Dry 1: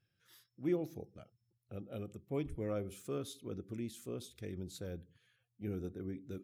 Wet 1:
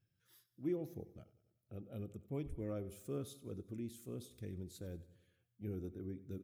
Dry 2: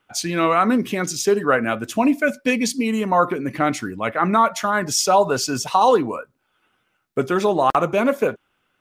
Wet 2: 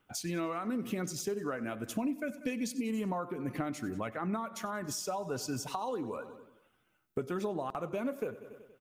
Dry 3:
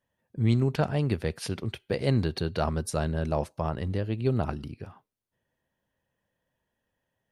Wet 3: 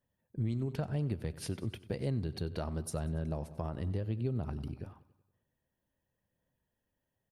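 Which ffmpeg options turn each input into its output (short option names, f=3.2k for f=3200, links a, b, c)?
-af "aphaser=in_gain=1:out_gain=1:delay=3.4:decay=0.21:speed=0.93:type=sinusoidal,highshelf=f=9.7k:g=10.5,aecho=1:1:94|188|282|376|470:0.112|0.0651|0.0377|0.0219|0.0127,acompressor=threshold=-28dB:ratio=6,lowshelf=f=470:g=8,volume=-9dB"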